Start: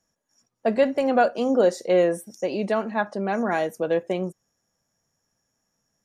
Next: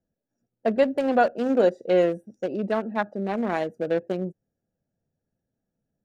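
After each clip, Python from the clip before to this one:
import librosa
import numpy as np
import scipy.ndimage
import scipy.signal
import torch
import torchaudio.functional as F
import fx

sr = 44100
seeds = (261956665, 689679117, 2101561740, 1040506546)

y = fx.wiener(x, sr, points=41)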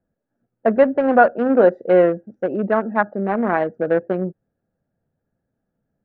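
y = fx.lowpass_res(x, sr, hz=1500.0, q=1.6)
y = F.gain(torch.from_numpy(y), 5.5).numpy()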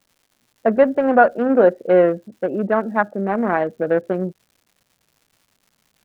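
y = fx.dmg_crackle(x, sr, seeds[0], per_s=270.0, level_db=-46.0)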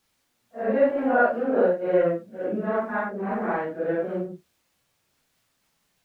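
y = fx.phase_scramble(x, sr, seeds[1], window_ms=200)
y = F.gain(torch.from_numpy(y), -6.5).numpy()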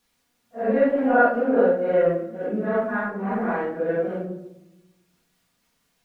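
y = fx.room_shoebox(x, sr, seeds[2], volume_m3=3900.0, walls='furnished', distance_m=1.8)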